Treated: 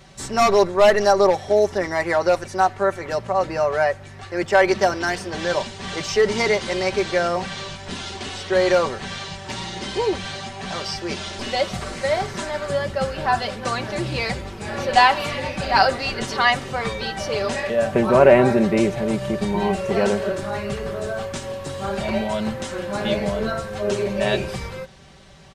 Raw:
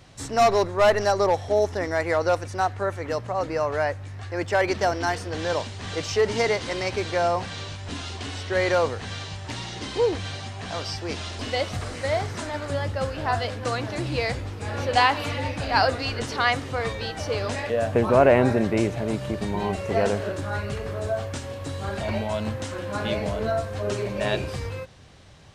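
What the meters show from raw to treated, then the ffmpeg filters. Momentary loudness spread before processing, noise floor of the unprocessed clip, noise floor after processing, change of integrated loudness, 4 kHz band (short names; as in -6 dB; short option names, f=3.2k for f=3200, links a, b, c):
12 LU, -37 dBFS, -38 dBFS, +4.0 dB, +4.0 dB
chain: -af "aecho=1:1:5.2:0.65,volume=2.5dB"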